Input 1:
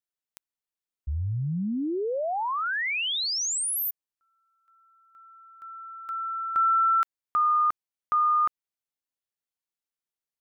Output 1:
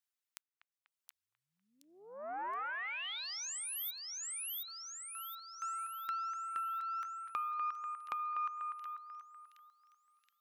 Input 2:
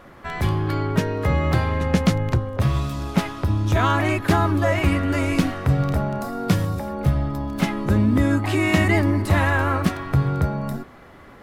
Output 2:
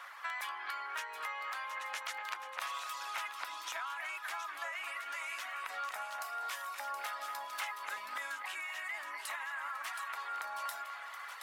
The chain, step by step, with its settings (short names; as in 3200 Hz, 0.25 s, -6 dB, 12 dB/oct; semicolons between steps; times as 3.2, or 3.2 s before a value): HPF 1000 Hz 24 dB/oct; dynamic EQ 4500 Hz, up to -5 dB, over -46 dBFS, Q 1.8; limiter -21 dBFS; reverb removal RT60 0.79 s; compressor 3:1, threshold -42 dBFS; split-band echo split 2800 Hz, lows 0.245 s, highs 0.722 s, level -8 dB; vocal rider within 4 dB 0.5 s; Doppler distortion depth 0.23 ms; gain +1.5 dB